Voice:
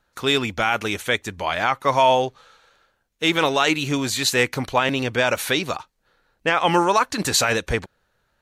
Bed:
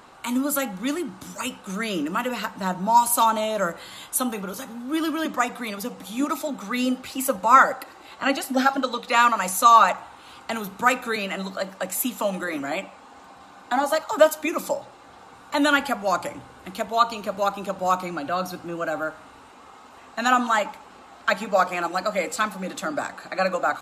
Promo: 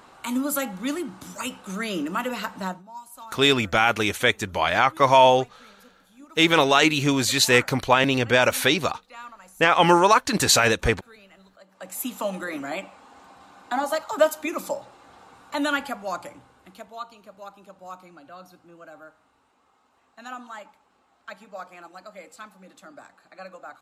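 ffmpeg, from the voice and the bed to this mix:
-filter_complex "[0:a]adelay=3150,volume=1.19[s0];[1:a]volume=8.91,afade=t=out:st=2.62:d=0.21:silence=0.0794328,afade=t=in:st=11.68:d=0.45:silence=0.0944061,afade=t=out:st=15.24:d=1.83:silence=0.177828[s1];[s0][s1]amix=inputs=2:normalize=0"

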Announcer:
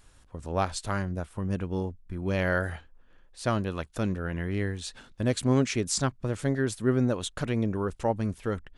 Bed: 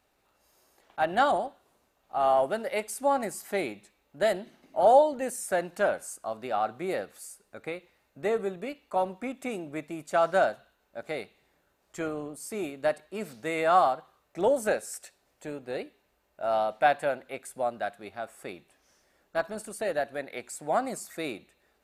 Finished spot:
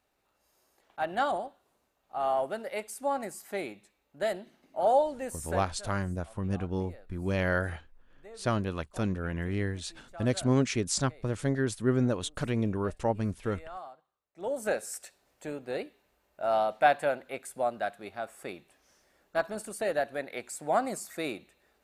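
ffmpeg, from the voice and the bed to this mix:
-filter_complex "[0:a]adelay=5000,volume=0.841[s0];[1:a]volume=6.68,afade=t=out:st=5.46:d=0.3:silence=0.149624,afade=t=in:st=14.34:d=0.52:silence=0.0841395[s1];[s0][s1]amix=inputs=2:normalize=0"

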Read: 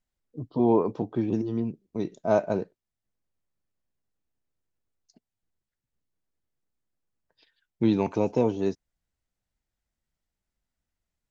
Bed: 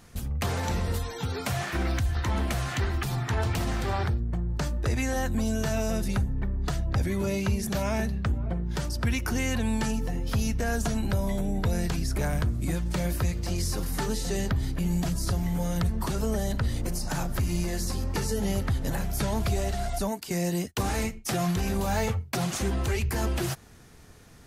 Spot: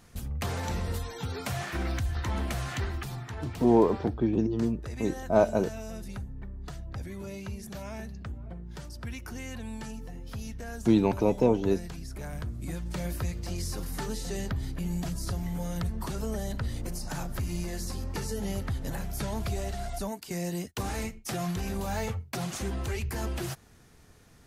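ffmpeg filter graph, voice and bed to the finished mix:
-filter_complex "[0:a]adelay=3050,volume=1.06[s0];[1:a]volume=1.41,afade=t=out:st=2.75:d=0.59:silence=0.398107,afade=t=in:st=12.18:d=0.89:silence=0.473151[s1];[s0][s1]amix=inputs=2:normalize=0"

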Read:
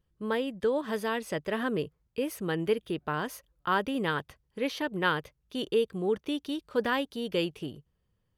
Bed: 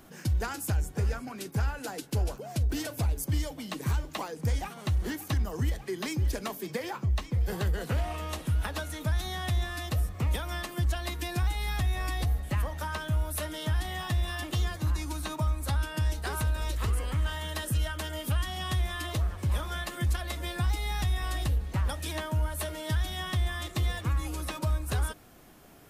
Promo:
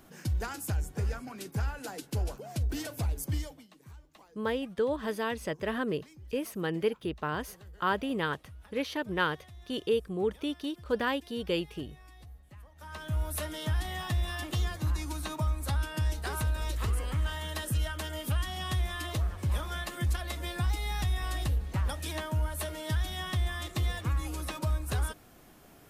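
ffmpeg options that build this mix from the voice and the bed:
-filter_complex "[0:a]adelay=4150,volume=0.841[s0];[1:a]volume=7.5,afade=t=out:st=3.33:d=0.35:silence=0.112202,afade=t=in:st=12.75:d=0.5:silence=0.0944061[s1];[s0][s1]amix=inputs=2:normalize=0"

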